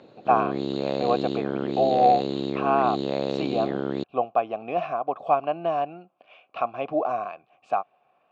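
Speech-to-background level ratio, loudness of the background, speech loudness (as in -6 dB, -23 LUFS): 2.5 dB, -28.5 LUFS, -26.0 LUFS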